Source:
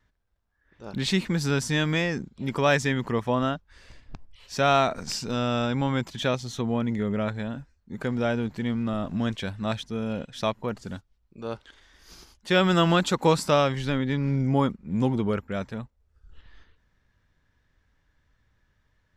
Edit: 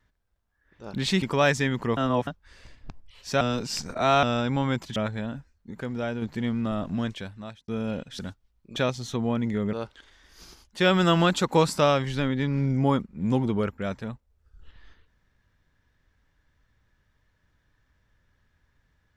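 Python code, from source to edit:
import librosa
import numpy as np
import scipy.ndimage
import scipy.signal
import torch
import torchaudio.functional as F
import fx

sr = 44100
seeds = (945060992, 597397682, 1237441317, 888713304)

y = fx.edit(x, sr, fx.cut(start_s=1.22, length_s=1.25),
    fx.reverse_span(start_s=3.22, length_s=0.3),
    fx.reverse_span(start_s=4.66, length_s=0.82),
    fx.move(start_s=6.21, length_s=0.97, to_s=11.43),
    fx.clip_gain(start_s=7.93, length_s=0.51, db=-4.5),
    fx.fade_out_span(start_s=9.1, length_s=0.8),
    fx.cut(start_s=10.41, length_s=0.45), tone=tone)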